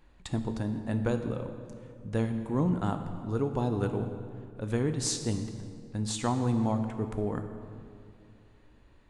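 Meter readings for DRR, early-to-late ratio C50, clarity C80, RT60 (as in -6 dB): 7.0 dB, 8.0 dB, 9.0 dB, 2.4 s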